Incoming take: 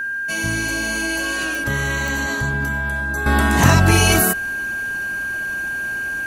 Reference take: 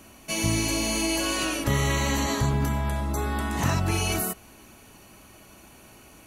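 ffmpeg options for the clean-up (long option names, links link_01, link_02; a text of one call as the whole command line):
ffmpeg -i in.wav -af "adeclick=threshold=4,bandreject=frequency=1600:width=30,asetnsamples=nb_out_samples=441:pad=0,asendcmd='3.26 volume volume -11.5dB',volume=0dB" out.wav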